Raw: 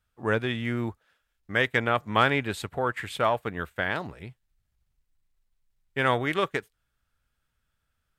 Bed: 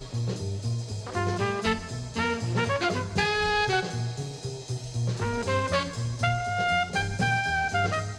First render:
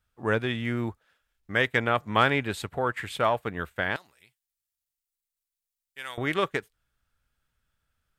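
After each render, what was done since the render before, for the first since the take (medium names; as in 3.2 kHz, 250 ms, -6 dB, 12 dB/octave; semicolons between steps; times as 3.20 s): 3.96–6.18 s: pre-emphasis filter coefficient 0.97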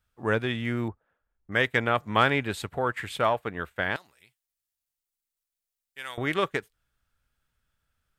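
0.88–1.52 s: low-pass 1.1 kHz; 3.33–3.80 s: tone controls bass -3 dB, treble -4 dB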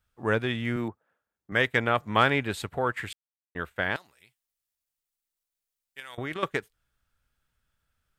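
0.76–1.52 s: high-pass 140 Hz; 3.13–3.55 s: mute; 6.00–6.43 s: level held to a coarse grid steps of 11 dB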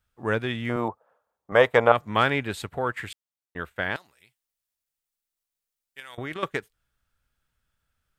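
0.69–1.92 s: high-order bell 740 Hz +13 dB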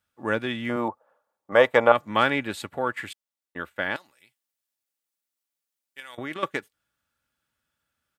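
high-pass 130 Hz 12 dB/octave; comb 3.5 ms, depth 32%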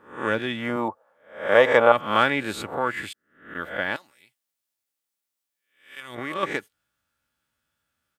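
reverse spectral sustain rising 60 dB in 0.46 s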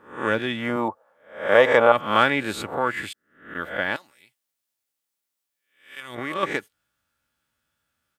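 trim +1.5 dB; peak limiter -2 dBFS, peak gain reduction 2.5 dB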